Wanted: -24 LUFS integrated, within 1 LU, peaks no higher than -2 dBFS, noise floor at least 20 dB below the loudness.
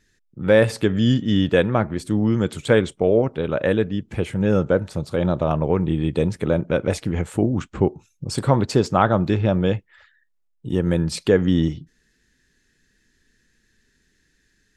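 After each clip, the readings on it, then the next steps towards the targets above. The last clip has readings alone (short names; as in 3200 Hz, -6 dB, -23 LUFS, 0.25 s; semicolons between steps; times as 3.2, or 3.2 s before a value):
loudness -21.0 LUFS; peak -2.0 dBFS; loudness target -24.0 LUFS
-> gain -3 dB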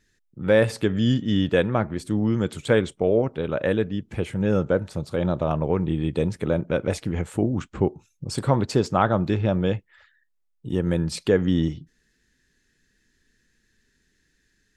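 loudness -24.0 LUFS; peak -5.0 dBFS; noise floor -70 dBFS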